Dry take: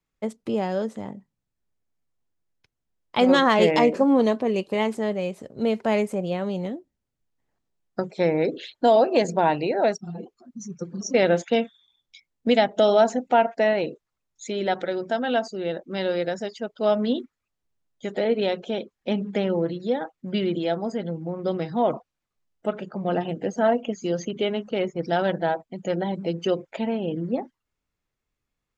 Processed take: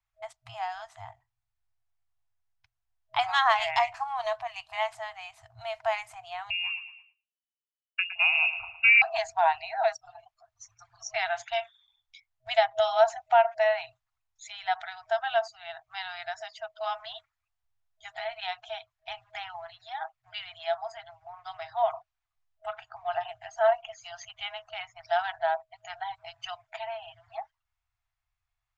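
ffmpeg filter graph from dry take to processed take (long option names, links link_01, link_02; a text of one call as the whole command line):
ffmpeg -i in.wav -filter_complex "[0:a]asettb=1/sr,asplit=3[link_01][link_02][link_03];[link_01]atrim=end=6.504[link_04];[link_02]atrim=start=6.5:end=9.02,asetpts=PTS-STARTPTS,afade=type=in:duration=0.004:curve=qsin,afade=type=out:start_time=2.516:duration=0.004:curve=qsin,aecho=1:1:112|224|336|448|560:0.282|0.124|0.0546|0.024|0.0106,atrim=end_sample=111132,lowpass=frequency=2600:width_type=q:width=0.5098,lowpass=frequency=2600:width_type=q:width=0.6013,lowpass=frequency=2600:width_type=q:width=0.9,lowpass=frequency=2600:width_type=q:width=2.563,afreqshift=-3000,agate=range=-33dB:threshold=-51dB:ratio=3:release=100:detection=peak[link_05];[link_03]atrim=start=9.016[link_06];[link_04][link_05]acrossfade=duration=0.004:curve1=hsin:curve2=qsin[link_07];[link_07][link_06]acrossfade=duration=0.004:curve1=qsin:curve2=hsin,lowpass=frequency=3900:poles=1,afftfilt=real='re*(1-between(b*sr/4096,120,640))':imag='im*(1-between(b*sr/4096,120,640))':win_size=4096:overlap=0.75,volume=-1dB" out.wav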